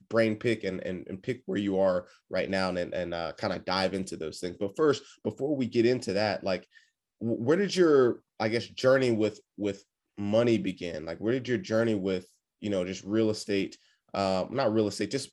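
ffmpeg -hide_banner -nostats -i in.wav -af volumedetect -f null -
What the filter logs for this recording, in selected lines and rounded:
mean_volume: -28.8 dB
max_volume: -10.9 dB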